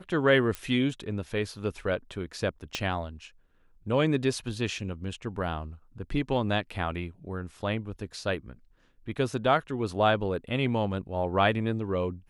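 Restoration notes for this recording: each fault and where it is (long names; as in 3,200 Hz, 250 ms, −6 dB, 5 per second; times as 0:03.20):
0:00.55: click −18 dBFS
0:02.75: click −15 dBFS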